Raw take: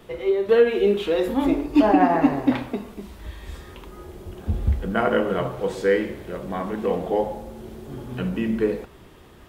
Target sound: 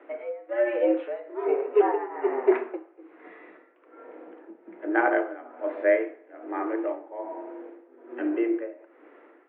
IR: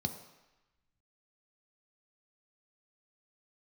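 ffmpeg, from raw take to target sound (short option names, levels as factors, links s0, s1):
-filter_complex "[0:a]tremolo=f=1.2:d=0.87,asplit=2[s0][s1];[1:a]atrim=start_sample=2205,asetrate=57330,aresample=44100[s2];[s1][s2]afir=irnorm=-1:irlink=0,volume=0.237[s3];[s0][s3]amix=inputs=2:normalize=0,highpass=f=200:t=q:w=0.5412,highpass=f=200:t=q:w=1.307,lowpass=f=2200:t=q:w=0.5176,lowpass=f=2200:t=q:w=0.7071,lowpass=f=2200:t=q:w=1.932,afreqshift=120"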